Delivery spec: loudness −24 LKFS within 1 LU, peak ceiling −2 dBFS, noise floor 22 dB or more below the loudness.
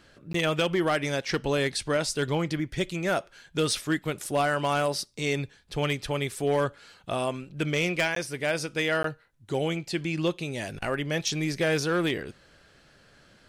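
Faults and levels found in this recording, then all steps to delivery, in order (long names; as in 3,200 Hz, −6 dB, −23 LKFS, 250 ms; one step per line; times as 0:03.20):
share of clipped samples 0.5%; peaks flattened at −18.0 dBFS; number of dropouts 3; longest dropout 13 ms; integrated loudness −28.0 LKFS; sample peak −18.0 dBFS; target loudness −24.0 LKFS
→ clipped peaks rebuilt −18 dBFS
repair the gap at 0:00.33/0:08.15/0:09.03, 13 ms
level +4 dB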